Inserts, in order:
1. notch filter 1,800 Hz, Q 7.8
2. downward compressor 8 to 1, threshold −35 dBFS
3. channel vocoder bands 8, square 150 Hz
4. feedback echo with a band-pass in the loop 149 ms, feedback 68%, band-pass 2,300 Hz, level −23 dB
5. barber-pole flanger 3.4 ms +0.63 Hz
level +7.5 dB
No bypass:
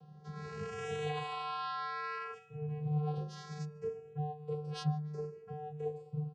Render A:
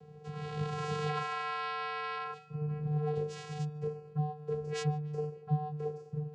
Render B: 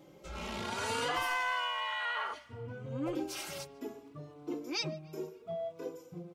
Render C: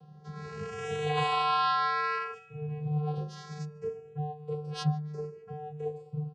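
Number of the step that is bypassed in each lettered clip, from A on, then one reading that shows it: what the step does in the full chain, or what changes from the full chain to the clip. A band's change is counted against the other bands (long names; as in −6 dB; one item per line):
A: 5, change in momentary loudness spread −3 LU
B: 3, 125 Hz band −12.5 dB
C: 2, average gain reduction 1.5 dB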